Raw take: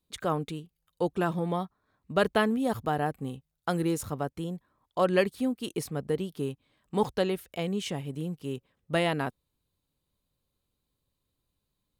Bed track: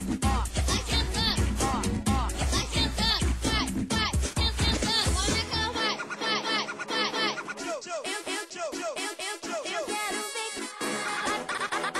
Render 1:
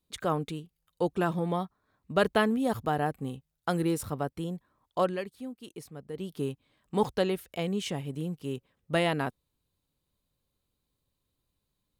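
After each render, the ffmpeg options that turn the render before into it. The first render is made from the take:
ffmpeg -i in.wav -filter_complex "[0:a]asettb=1/sr,asplit=3[link_01][link_02][link_03];[link_01]atrim=end=3.834[link_04];[link_02]atrim=start=3.83:end=4.4,asetpts=PTS-STARTPTS,afade=type=in:duration=0.004:curve=qsin,afade=type=out:start_time=0.566:duration=0.004:curve=qsin,bandreject=frequency=6600:width=7.5[link_05];[link_03]atrim=start=4.396[link_06];[link_04][link_05]acrossfade=duration=0.004:curve1=hsin:curve2=qsin[link_07];[link_07][link_06]acrossfade=duration=0.004:curve1=qsin:curve2=hsin,asplit=3[link_08][link_09][link_10];[link_08]atrim=end=5.17,asetpts=PTS-STARTPTS,afade=type=out:start_time=4.99:duration=0.18:silence=0.281838[link_11];[link_09]atrim=start=5.17:end=6.13,asetpts=PTS-STARTPTS,volume=-11dB[link_12];[link_10]atrim=start=6.13,asetpts=PTS-STARTPTS,afade=type=in:duration=0.18:silence=0.281838[link_13];[link_11][link_12][link_13]concat=n=3:v=0:a=1" out.wav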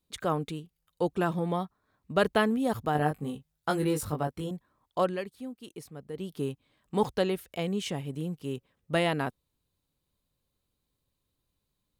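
ffmpeg -i in.wav -filter_complex "[0:a]asettb=1/sr,asplit=3[link_01][link_02][link_03];[link_01]atrim=end=2.934[link_04];[link_02]atrim=start=2.93:end=4.51,asetpts=PTS-STARTPTS,afade=type=in:duration=0.004:curve=qsin,afade=type=out:start_time=1.576:duration=0.004:curve=qsin,asplit=2[link_05][link_06];[link_06]adelay=20,volume=-3.5dB[link_07];[link_05][link_07]amix=inputs=2:normalize=0,atrim=end_sample=69678[link_08];[link_03]atrim=start=4.506[link_09];[link_04][link_08]acrossfade=duration=0.004:curve1=hsin:curve2=qsin[link_10];[link_10][link_09]acrossfade=duration=0.004:curve1=qsin:curve2=hsin" out.wav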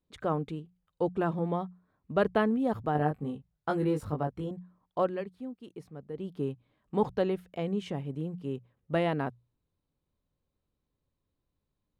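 ffmpeg -i in.wav -af "lowpass=frequency=1200:poles=1,bandreject=frequency=60:width_type=h:width=6,bandreject=frequency=120:width_type=h:width=6,bandreject=frequency=180:width_type=h:width=6" out.wav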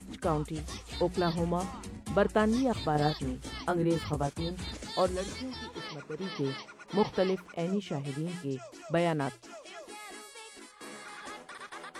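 ffmpeg -i in.wav -i bed.wav -filter_complex "[1:a]volume=-14.5dB[link_01];[0:a][link_01]amix=inputs=2:normalize=0" out.wav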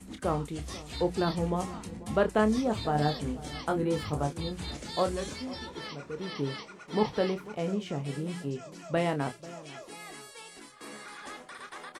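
ffmpeg -i in.wav -filter_complex "[0:a]asplit=2[link_01][link_02];[link_02]adelay=28,volume=-9dB[link_03];[link_01][link_03]amix=inputs=2:normalize=0,asplit=2[link_04][link_05];[link_05]adelay=492,lowpass=frequency=940:poles=1,volume=-16.5dB,asplit=2[link_06][link_07];[link_07]adelay=492,lowpass=frequency=940:poles=1,volume=0.36,asplit=2[link_08][link_09];[link_09]adelay=492,lowpass=frequency=940:poles=1,volume=0.36[link_10];[link_04][link_06][link_08][link_10]amix=inputs=4:normalize=0" out.wav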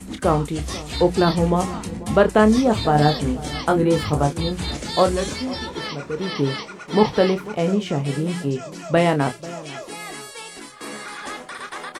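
ffmpeg -i in.wav -af "volume=11dB,alimiter=limit=-3dB:level=0:latency=1" out.wav

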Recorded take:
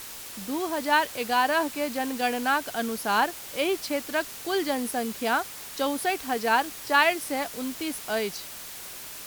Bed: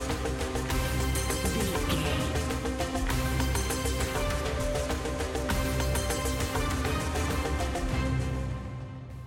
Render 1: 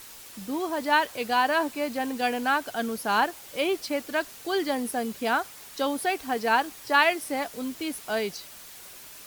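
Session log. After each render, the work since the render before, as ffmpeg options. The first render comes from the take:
ffmpeg -i in.wav -af "afftdn=noise_reduction=6:noise_floor=-41" out.wav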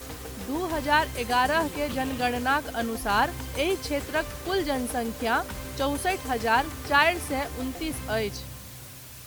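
ffmpeg -i in.wav -i bed.wav -filter_complex "[1:a]volume=-8.5dB[link_01];[0:a][link_01]amix=inputs=2:normalize=0" out.wav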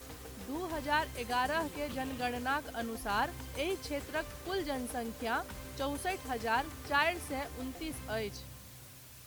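ffmpeg -i in.wav -af "volume=-9dB" out.wav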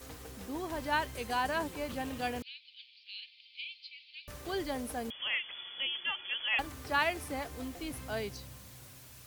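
ffmpeg -i in.wav -filter_complex "[0:a]asettb=1/sr,asplit=3[link_01][link_02][link_03];[link_01]atrim=end=2.424[link_04];[link_02]atrim=start=2.42:end=4.28,asetpts=PTS-STARTPTS,afade=type=in:duration=0.004:curve=qsin,afade=type=out:start_time=1.856:duration=0.004:curve=qsin,asuperpass=centerf=3300:order=12:qfactor=1.4[link_05];[link_03]atrim=start=4.276[link_06];[link_04][link_05]acrossfade=duration=0.004:curve1=hsin:curve2=qsin[link_07];[link_07][link_06]acrossfade=duration=0.004:curve1=qsin:curve2=hsin,asettb=1/sr,asplit=3[link_08][link_09][link_10];[link_08]atrim=end=5.104[link_11];[link_09]atrim=start=5.1:end=6.59,asetpts=PTS-STARTPTS,afade=type=in:duration=0.004:curve=qsin,afade=type=out:start_time=1.486:duration=0.004:curve=qsin,lowpass=frequency=3000:width_type=q:width=0.5098,lowpass=frequency=3000:width_type=q:width=0.6013,lowpass=frequency=3000:width_type=q:width=0.9,lowpass=frequency=3000:width_type=q:width=2.563,afreqshift=-3500[link_12];[link_10]atrim=start=6.586[link_13];[link_11][link_12]acrossfade=duration=0.004:curve1=hsin:curve2=qsin[link_14];[link_14][link_13]acrossfade=duration=0.004:curve1=qsin:curve2=hsin" out.wav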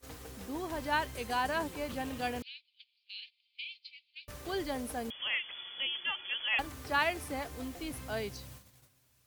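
ffmpeg -i in.wav -af "agate=range=-17dB:threshold=-49dB:ratio=16:detection=peak" out.wav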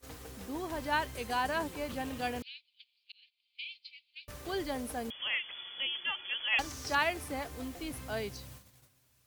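ffmpeg -i in.wav -filter_complex "[0:a]asettb=1/sr,asplit=3[link_01][link_02][link_03];[link_01]atrim=end=6.524[link_04];[link_02]atrim=start=6.52:end=6.95,asetpts=PTS-STARTPTS,afade=type=in:duration=0.004:curve=qsin,afade=type=out:start_time=0.426:duration=0.004:curve=qsin,equalizer=frequency=5800:width=1.5:gain=14.5[link_05];[link_03]atrim=start=6.946[link_06];[link_04][link_05]acrossfade=duration=0.004:curve1=hsin:curve2=qsin[link_07];[link_07][link_06]acrossfade=duration=0.004:curve1=qsin:curve2=hsin,asplit=2[link_08][link_09];[link_08]atrim=end=3.12,asetpts=PTS-STARTPTS,afade=type=out:start_time=3.116:duration=0.004:curve=hsin[link_10];[link_09]atrim=start=3.12,asetpts=PTS-STARTPTS,afade=type=in:duration=0.5[link_11];[link_10][link_11]concat=n=2:v=0:a=1" out.wav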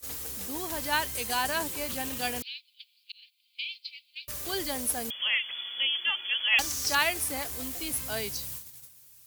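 ffmpeg -i in.wav -af "crystalizer=i=4.5:c=0" out.wav

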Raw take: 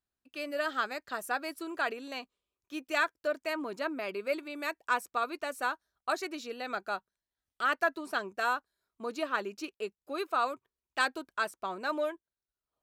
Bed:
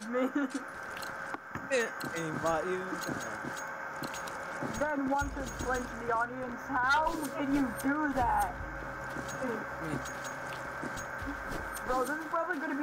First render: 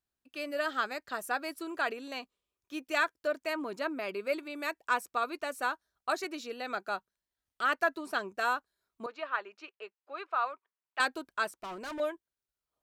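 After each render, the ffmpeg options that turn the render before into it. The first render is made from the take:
ffmpeg -i in.wav -filter_complex "[0:a]asettb=1/sr,asplit=3[link_01][link_02][link_03];[link_01]atrim=end=6.244[link_04];[link_02]atrim=start=6.24:end=6.89,asetpts=PTS-STARTPTS,afade=type=in:duration=0.004:curve=qsin,afade=type=out:start_time=0.646:duration=0.004:curve=qsin,highpass=150[link_05];[link_03]atrim=start=6.886[link_06];[link_04][link_05]acrossfade=duration=0.004:curve1=hsin:curve2=qsin[link_07];[link_07][link_06]acrossfade=duration=0.004:curve1=qsin:curve2=hsin,asettb=1/sr,asplit=3[link_08][link_09][link_10];[link_08]atrim=end=9.064[link_11];[link_09]atrim=start=9.06:end=11,asetpts=PTS-STARTPTS,afade=type=in:duration=0.004:curve=qsin,afade=type=out:start_time=1.936:duration=0.004:curve=qsin,highpass=740,lowpass=2500[link_12];[link_10]atrim=start=10.996[link_13];[link_11][link_12]acrossfade=duration=0.004:curve1=hsin:curve2=qsin[link_14];[link_14][link_13]acrossfade=duration=0.004:curve1=qsin:curve2=hsin,asettb=1/sr,asplit=3[link_15][link_16][link_17];[link_15]atrim=end=11.554[link_18];[link_16]atrim=start=11.55:end=12,asetpts=PTS-STARTPTS,afade=type=in:duration=0.004:curve=qsin,afade=type=out:start_time=0.446:duration=0.004:curve=qsin,asoftclip=type=hard:threshold=-38dB[link_19];[link_17]atrim=start=11.996[link_20];[link_18][link_19]acrossfade=duration=0.004:curve1=hsin:curve2=qsin[link_21];[link_21][link_20]acrossfade=duration=0.004:curve1=qsin:curve2=hsin" out.wav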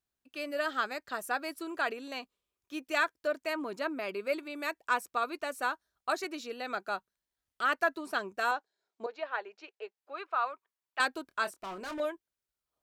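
ffmpeg -i in.wav -filter_complex "[0:a]asettb=1/sr,asplit=3[link_01][link_02][link_03];[link_01]atrim=end=8.514[link_04];[link_02]atrim=start=8.51:end=9.98,asetpts=PTS-STARTPTS,afade=type=in:duration=0.004:curve=qsin,afade=type=out:start_time=1.466:duration=0.004:curve=qsin,highpass=230,equalizer=frequency=260:width_type=q:width=4:gain=-4,equalizer=frequency=450:width_type=q:width=4:gain=5,equalizer=frequency=770:width_type=q:width=4:gain=6,equalizer=frequency=1200:width_type=q:width=4:gain=-8,equalizer=frequency=2700:width_type=q:width=4:gain=-3,lowpass=frequency=7200:width=0.5412,lowpass=frequency=7200:width=1.3066[link_05];[link_03]atrim=start=9.976[link_06];[link_04][link_05]acrossfade=duration=0.004:curve1=hsin:curve2=qsin[link_07];[link_07][link_06]acrossfade=duration=0.004:curve1=qsin:curve2=hsin,asettb=1/sr,asplit=3[link_08][link_09][link_10];[link_08]atrim=end=11.274[link_11];[link_09]atrim=start=11.27:end=12.05,asetpts=PTS-STARTPTS,afade=type=in:duration=0.004:curve=qsin,afade=type=out:start_time=0.776:duration=0.004:curve=qsin,asplit=2[link_12][link_13];[link_13]adelay=26,volume=-11dB[link_14];[link_12][link_14]amix=inputs=2:normalize=0,atrim=end_sample=34398[link_15];[link_10]atrim=start=12.046[link_16];[link_11][link_15]acrossfade=duration=0.004:curve1=hsin:curve2=qsin[link_17];[link_17][link_16]acrossfade=duration=0.004:curve1=qsin:curve2=hsin" out.wav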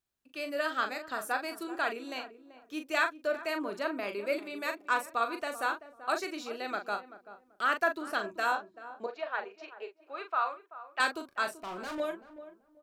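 ffmpeg -i in.wav -filter_complex "[0:a]asplit=2[link_01][link_02];[link_02]adelay=39,volume=-7.5dB[link_03];[link_01][link_03]amix=inputs=2:normalize=0,asplit=2[link_04][link_05];[link_05]adelay=385,lowpass=frequency=930:poles=1,volume=-12.5dB,asplit=2[link_06][link_07];[link_07]adelay=385,lowpass=frequency=930:poles=1,volume=0.25,asplit=2[link_08][link_09];[link_09]adelay=385,lowpass=frequency=930:poles=1,volume=0.25[link_10];[link_04][link_06][link_08][link_10]amix=inputs=4:normalize=0" out.wav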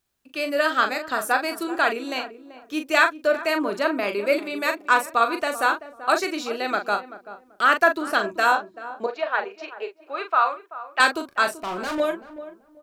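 ffmpeg -i in.wav -af "volume=10.5dB" out.wav

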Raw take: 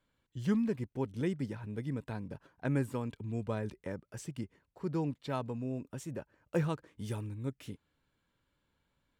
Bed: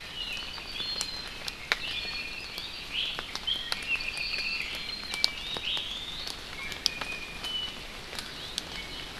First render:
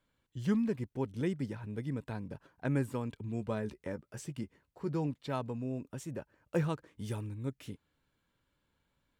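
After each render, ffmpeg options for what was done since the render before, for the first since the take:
ffmpeg -i in.wav -filter_complex "[0:a]asettb=1/sr,asplit=3[link_01][link_02][link_03];[link_01]atrim=end=3.274[link_04];[link_02]atrim=start=3.27:end=5.07,asetpts=PTS-STARTPTS,afade=type=in:duration=0.004:curve=qsin,afade=type=out:start_time=1.796:duration=0.004:curve=qsin,asplit=2[link_05][link_06];[link_06]adelay=14,volume=-11dB[link_07];[link_05][link_07]amix=inputs=2:normalize=0,atrim=end_sample=79380[link_08];[link_03]atrim=start=5.066[link_09];[link_04][link_08]acrossfade=duration=0.004:curve1=hsin:curve2=qsin[link_10];[link_10][link_09]acrossfade=duration=0.004:curve1=qsin:curve2=hsin" out.wav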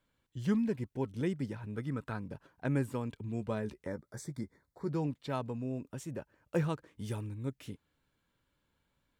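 ffmpeg -i in.wav -filter_complex "[0:a]asettb=1/sr,asplit=3[link_01][link_02][link_03];[link_01]atrim=end=0.584[link_04];[link_02]atrim=start=0.58:end=1.12,asetpts=PTS-STARTPTS,afade=type=in:duration=0.004:curve=qsin,afade=type=out:start_time=0.536:duration=0.004:curve=qsin,asuperstop=centerf=1200:order=20:qfactor=6.6[link_05];[link_03]atrim=start=1.116[link_06];[link_04][link_05]acrossfade=duration=0.004:curve1=hsin:curve2=qsin[link_07];[link_07][link_06]acrossfade=duration=0.004:curve1=qsin:curve2=hsin,asettb=1/sr,asplit=3[link_08][link_09][link_10];[link_08]atrim=end=1.754[link_11];[link_09]atrim=start=1.75:end=2.21,asetpts=PTS-STARTPTS,afade=type=in:duration=0.004:curve=qsin,afade=type=out:start_time=0.456:duration=0.004:curve=qsin,equalizer=frequency=1300:width=3.7:gain=13[link_12];[link_10]atrim=start=2.206[link_13];[link_11][link_12]acrossfade=duration=0.004:curve1=hsin:curve2=qsin[link_14];[link_14][link_13]acrossfade=duration=0.004:curve1=qsin:curve2=hsin,asplit=3[link_15][link_16][link_17];[link_15]afade=type=out:start_time=3.85:duration=0.02[link_18];[link_16]asuperstop=centerf=2800:order=8:qfactor=2.4,afade=type=in:start_time=3.85:duration=0.02,afade=type=out:start_time=4.9:duration=0.02[link_19];[link_17]afade=type=in:start_time=4.9:duration=0.02[link_20];[link_18][link_19][link_20]amix=inputs=3:normalize=0" out.wav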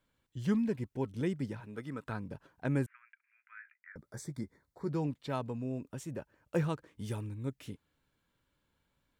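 ffmpeg -i in.wav -filter_complex "[0:a]asettb=1/sr,asplit=3[link_01][link_02][link_03];[link_01]atrim=end=1.604[link_04];[link_02]atrim=start=1.6:end=2.06,asetpts=PTS-STARTPTS,afade=type=in:duration=0.004:curve=qsin,afade=type=out:start_time=0.456:duration=0.004:curve=qsin,highpass=frequency=300:poles=1[link_05];[link_03]atrim=start=2.056[link_06];[link_04][link_05]acrossfade=duration=0.004:curve1=hsin:curve2=qsin[link_07];[link_07][link_06]acrossfade=duration=0.004:curve1=qsin:curve2=hsin,asettb=1/sr,asplit=3[link_08][link_09][link_10];[link_08]atrim=end=2.864[link_11];[link_09]atrim=start=2.86:end=3.96,asetpts=PTS-STARTPTS,afade=type=in:duration=0.004:curve=qsin,afade=type=out:start_time=1.096:duration=0.004:curve=qsin,asuperpass=centerf=1800:order=8:qfactor=1.8[link_12];[link_10]atrim=start=3.956[link_13];[link_11][link_12]acrossfade=duration=0.004:curve1=hsin:curve2=qsin[link_14];[link_14][link_13]acrossfade=duration=0.004:curve1=qsin:curve2=hsin" out.wav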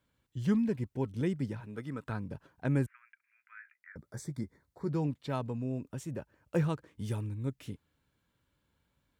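ffmpeg -i in.wav -af "highpass=48,lowshelf=frequency=150:gain=6" out.wav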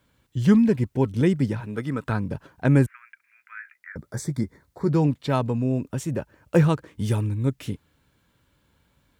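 ffmpeg -i in.wav -af "volume=11.5dB" out.wav

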